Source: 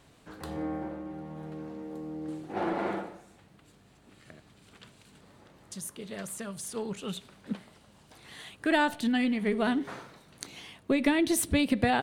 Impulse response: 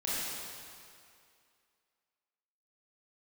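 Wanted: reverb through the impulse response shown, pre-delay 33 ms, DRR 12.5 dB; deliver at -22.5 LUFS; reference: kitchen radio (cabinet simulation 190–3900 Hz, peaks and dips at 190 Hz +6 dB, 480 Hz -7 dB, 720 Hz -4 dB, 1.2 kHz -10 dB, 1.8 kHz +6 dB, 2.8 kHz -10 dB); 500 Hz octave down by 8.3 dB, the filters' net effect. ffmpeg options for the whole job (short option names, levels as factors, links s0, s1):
-filter_complex "[0:a]equalizer=f=500:t=o:g=-7,asplit=2[s0][s1];[1:a]atrim=start_sample=2205,adelay=33[s2];[s1][s2]afir=irnorm=-1:irlink=0,volume=0.112[s3];[s0][s3]amix=inputs=2:normalize=0,highpass=190,equalizer=f=190:t=q:w=4:g=6,equalizer=f=480:t=q:w=4:g=-7,equalizer=f=720:t=q:w=4:g=-4,equalizer=f=1200:t=q:w=4:g=-10,equalizer=f=1800:t=q:w=4:g=6,equalizer=f=2800:t=q:w=4:g=-10,lowpass=f=3900:w=0.5412,lowpass=f=3900:w=1.3066,volume=3.55"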